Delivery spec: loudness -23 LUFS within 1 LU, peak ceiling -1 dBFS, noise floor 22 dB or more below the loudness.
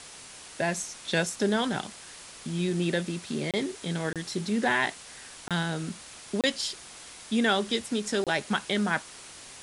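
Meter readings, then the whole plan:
dropouts 5; longest dropout 27 ms; noise floor -47 dBFS; noise floor target -51 dBFS; loudness -29.0 LUFS; peak level -11.5 dBFS; loudness target -23.0 LUFS
-> interpolate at 3.51/4.13/5.48/6.41/8.24 s, 27 ms; noise print and reduce 6 dB; trim +6 dB

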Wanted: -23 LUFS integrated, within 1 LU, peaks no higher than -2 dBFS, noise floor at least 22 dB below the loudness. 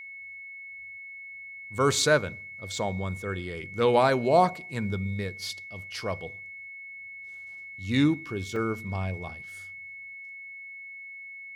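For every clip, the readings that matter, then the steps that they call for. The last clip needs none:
dropouts 1; longest dropout 3.6 ms; steady tone 2.2 kHz; tone level -40 dBFS; loudness -27.5 LUFS; peak level -8.5 dBFS; loudness target -23.0 LUFS
-> interpolate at 8.56 s, 3.6 ms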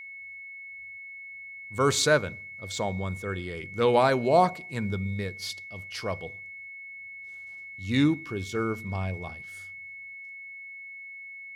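dropouts 0; steady tone 2.2 kHz; tone level -40 dBFS
-> band-stop 2.2 kHz, Q 30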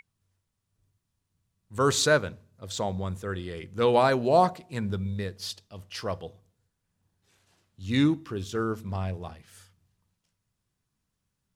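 steady tone not found; loudness -27.5 LUFS; peak level -8.5 dBFS; loudness target -23.0 LUFS
-> trim +4.5 dB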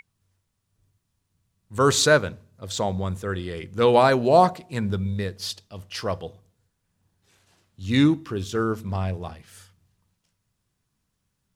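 loudness -23.0 LUFS; peak level -4.0 dBFS; noise floor -77 dBFS

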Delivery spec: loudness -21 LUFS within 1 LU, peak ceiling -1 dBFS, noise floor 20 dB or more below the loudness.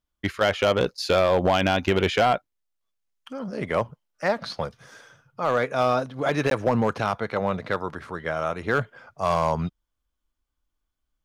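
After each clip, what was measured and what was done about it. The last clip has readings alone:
clipped samples 0.6%; clipping level -13.5 dBFS; dropouts 1; longest dropout 12 ms; loudness -24.5 LUFS; peak level -13.5 dBFS; loudness target -21.0 LUFS
-> clip repair -13.5 dBFS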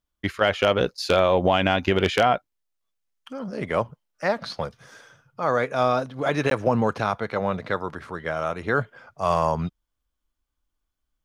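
clipped samples 0.0%; dropouts 1; longest dropout 12 ms
-> interpolate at 6.50 s, 12 ms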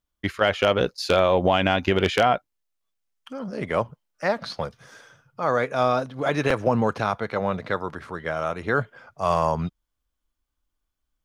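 dropouts 0; loudness -24.0 LUFS; peak level -4.5 dBFS; loudness target -21.0 LUFS
-> trim +3 dB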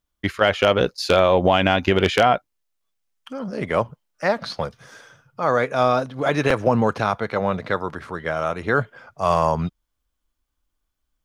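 loudness -21.0 LUFS; peak level -1.5 dBFS; noise floor -77 dBFS

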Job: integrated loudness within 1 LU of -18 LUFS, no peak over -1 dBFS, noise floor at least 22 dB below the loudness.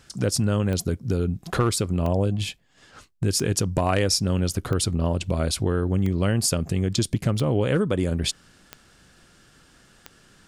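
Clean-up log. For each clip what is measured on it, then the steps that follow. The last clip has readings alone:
clicks found 8; loudness -24.0 LUFS; peak level -9.5 dBFS; loudness target -18.0 LUFS
-> de-click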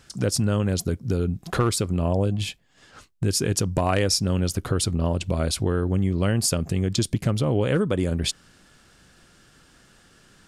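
clicks found 0; loudness -24.0 LUFS; peak level -9.5 dBFS; loudness target -18.0 LUFS
-> trim +6 dB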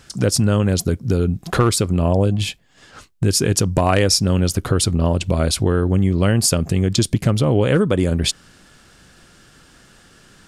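loudness -18.0 LUFS; peak level -3.5 dBFS; noise floor -50 dBFS

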